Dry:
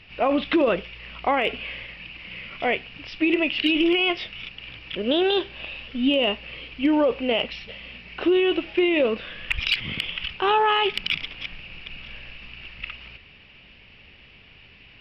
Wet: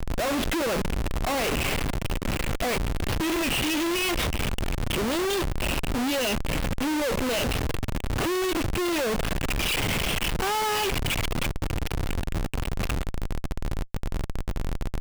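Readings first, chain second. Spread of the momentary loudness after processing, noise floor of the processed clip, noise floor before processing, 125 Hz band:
9 LU, −36 dBFS, −50 dBFS, +14.5 dB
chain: background noise brown −37 dBFS
comparator with hysteresis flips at −34.5 dBFS

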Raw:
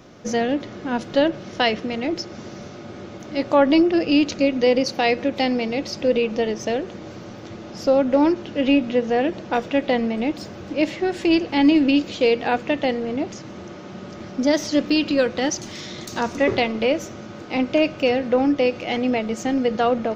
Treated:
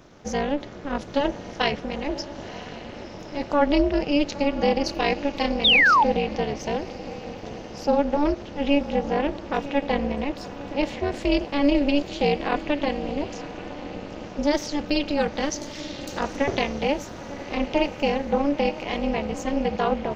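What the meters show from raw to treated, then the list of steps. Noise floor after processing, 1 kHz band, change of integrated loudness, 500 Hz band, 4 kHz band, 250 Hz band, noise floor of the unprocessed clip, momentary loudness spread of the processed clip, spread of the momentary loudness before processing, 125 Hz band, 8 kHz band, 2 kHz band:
−39 dBFS, +0.5 dB, −3.0 dB, −4.5 dB, +0.5 dB, −5.0 dB, −38 dBFS, 15 LU, 19 LU, +1.0 dB, can't be measured, +1.0 dB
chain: feedback delay with all-pass diffusion 1,017 ms, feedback 47%, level −13 dB
amplitude modulation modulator 290 Hz, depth 95%
sound drawn into the spectrogram fall, 0:05.64–0:06.04, 810–3,900 Hz −16 dBFS

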